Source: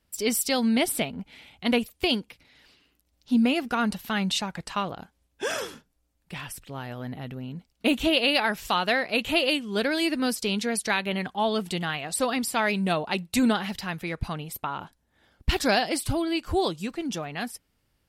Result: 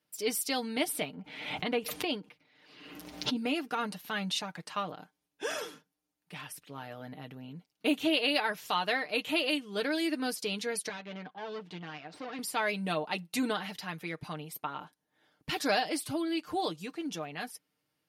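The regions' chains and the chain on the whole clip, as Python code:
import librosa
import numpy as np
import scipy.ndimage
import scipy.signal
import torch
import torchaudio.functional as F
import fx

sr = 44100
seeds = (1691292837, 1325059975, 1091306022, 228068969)

y = fx.chain(x, sr, fx.lowpass(hz=2200.0, slope=6),
    fx.pre_swell(db_per_s=51.0), at=(1.15, 3.36))
y = fx.chain(y, sr, fx.highpass(hz=120.0, slope=12),
    fx.tube_stage(drive_db=28.0, bias=0.7),
    fx.air_absorb(metres=180.0), at=(10.89, 12.39))
y = scipy.signal.sosfilt(scipy.signal.butter(2, 190.0, 'highpass', fs=sr, output='sos'), y)
y = fx.notch(y, sr, hz=7700.0, q=10.0)
y = y + 0.58 * np.pad(y, (int(6.6 * sr / 1000.0), 0))[:len(y)]
y = y * librosa.db_to_amplitude(-7.0)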